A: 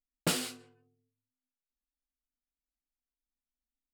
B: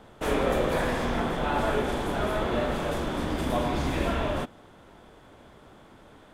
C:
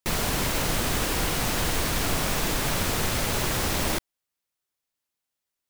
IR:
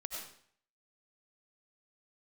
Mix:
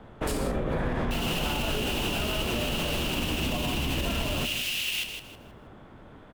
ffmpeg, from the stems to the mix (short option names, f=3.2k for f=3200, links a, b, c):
-filter_complex "[0:a]equalizer=f=14k:t=o:w=2.8:g=12.5,volume=-10.5dB[a];[1:a]acrossover=split=330[b][c];[c]acompressor=threshold=-28dB:ratio=6[d];[b][d]amix=inputs=2:normalize=0,bass=f=250:g=5,treble=f=4k:g=-12,volume=1dB,asplit=2[e][f];[f]volume=-14dB[g];[2:a]equalizer=f=13k:w=1.5:g=2.5,alimiter=limit=-16.5dB:level=0:latency=1,highpass=f=2.8k:t=q:w=9.2,adelay=1050,volume=-6.5dB,asplit=2[h][i];[i]volume=-8dB[j];[g][j]amix=inputs=2:normalize=0,aecho=0:1:159|318|477|636:1|0.29|0.0841|0.0244[k];[a][e][h][k]amix=inputs=4:normalize=0,alimiter=limit=-19.5dB:level=0:latency=1:release=69"